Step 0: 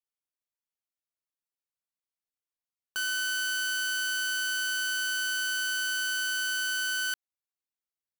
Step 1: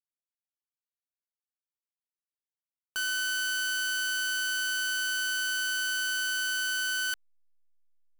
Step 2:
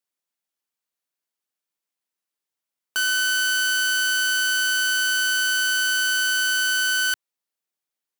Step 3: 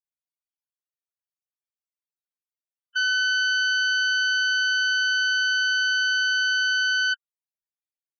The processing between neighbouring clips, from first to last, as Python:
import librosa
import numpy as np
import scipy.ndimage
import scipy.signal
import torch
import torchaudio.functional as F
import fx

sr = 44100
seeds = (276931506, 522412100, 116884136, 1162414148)

y1 = fx.backlash(x, sr, play_db=-56.5)
y2 = scipy.signal.sosfilt(scipy.signal.butter(2, 180.0, 'highpass', fs=sr, output='sos'), y1)
y2 = y2 * 10.0 ** (8.5 / 20.0)
y3 = fx.spec_topn(y2, sr, count=8)